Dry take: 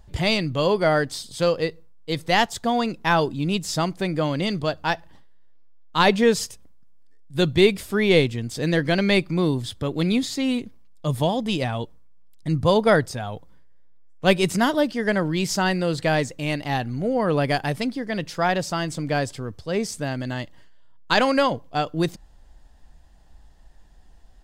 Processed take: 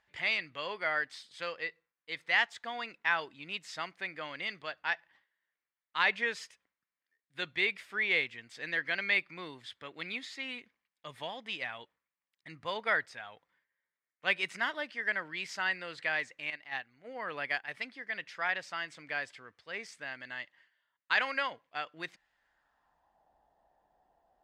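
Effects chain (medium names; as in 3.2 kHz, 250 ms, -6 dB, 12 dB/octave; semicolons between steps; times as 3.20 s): 16.50–17.74 s: gate -23 dBFS, range -10 dB; band-pass sweep 2 kHz -> 730 Hz, 22.31–23.28 s; trim -1.5 dB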